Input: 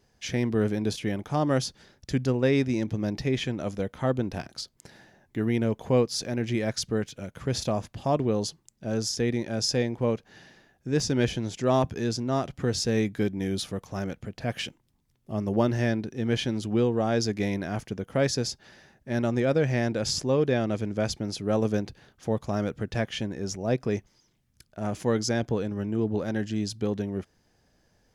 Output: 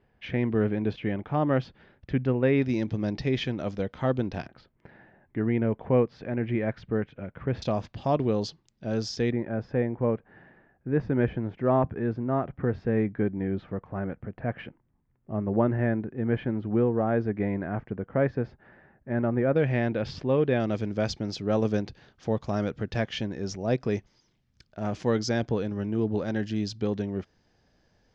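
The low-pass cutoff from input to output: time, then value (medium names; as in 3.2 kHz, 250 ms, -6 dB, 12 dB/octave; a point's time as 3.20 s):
low-pass 24 dB/octave
2.8 kHz
from 2.62 s 5 kHz
from 4.48 s 2.3 kHz
from 7.62 s 4.9 kHz
from 9.32 s 1.9 kHz
from 19.56 s 3.3 kHz
from 20.60 s 5.6 kHz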